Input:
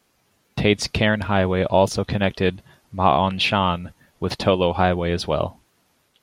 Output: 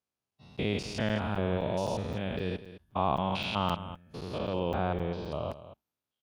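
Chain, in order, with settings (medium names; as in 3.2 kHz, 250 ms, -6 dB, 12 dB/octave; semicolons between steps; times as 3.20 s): spectrogram pixelated in time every 200 ms; high-pass 40 Hz 24 dB/octave; peaking EQ 1.9 kHz -4.5 dB 0.37 oct; spectral noise reduction 17 dB; 4.38–5.32 s: distance through air 170 m; delay 212 ms -14 dB; crackling interface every 0.26 s, samples 256, zero, from 0.31 s; trim -8.5 dB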